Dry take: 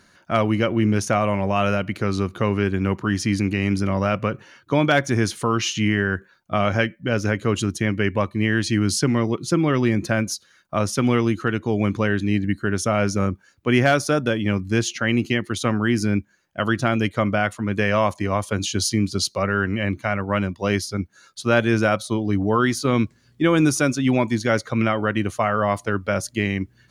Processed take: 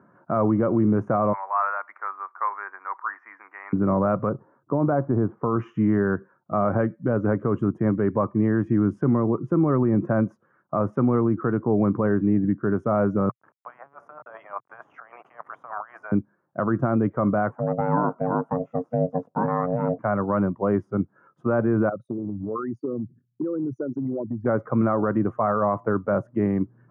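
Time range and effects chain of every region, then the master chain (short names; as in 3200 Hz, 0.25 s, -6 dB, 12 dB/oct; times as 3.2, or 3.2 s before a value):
1.33–3.73 elliptic band-pass 900–5700 Hz, stop band 70 dB + resonant high shelf 2700 Hz -10.5 dB, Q 3 + three-band expander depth 40%
4.29–5.56 G.711 law mismatch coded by A + LPF 1200 Hz
13.29–16.12 Chebyshev high-pass 640 Hz, order 5 + negative-ratio compressor -38 dBFS + sample gate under -43 dBFS
17.5–19.99 de-esser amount 75% + bell 3200 Hz -7.5 dB 1 oct + ring modulator 360 Hz
21.89–24.46 formant sharpening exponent 3 + gate with hold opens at -49 dBFS, closes at -55 dBFS + compressor 12:1, threshold -27 dBFS
whole clip: elliptic band-pass 120–1200 Hz, stop band 50 dB; limiter -16 dBFS; gain +3.5 dB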